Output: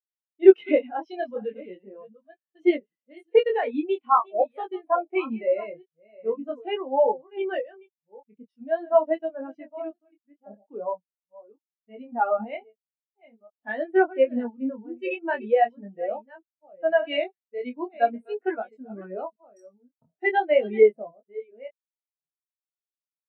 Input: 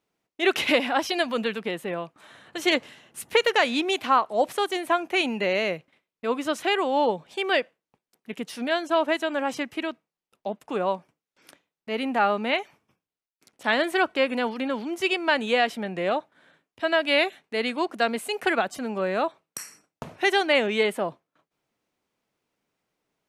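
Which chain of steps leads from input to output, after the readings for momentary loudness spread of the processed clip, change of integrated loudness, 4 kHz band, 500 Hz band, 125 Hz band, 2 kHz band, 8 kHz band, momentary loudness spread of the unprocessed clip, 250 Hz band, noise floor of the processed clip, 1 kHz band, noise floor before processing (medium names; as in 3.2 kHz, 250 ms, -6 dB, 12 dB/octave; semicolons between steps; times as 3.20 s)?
18 LU, +0.5 dB, -15.0 dB, +3.0 dB, no reading, -8.5 dB, under -35 dB, 13 LU, -0.5 dB, under -85 dBFS, -1.0 dB, under -85 dBFS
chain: chunks repeated in reverse 586 ms, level -8 dB; chorus 0.43 Hz, delay 18.5 ms, depth 6.2 ms; spectral contrast expander 2.5:1; trim +7.5 dB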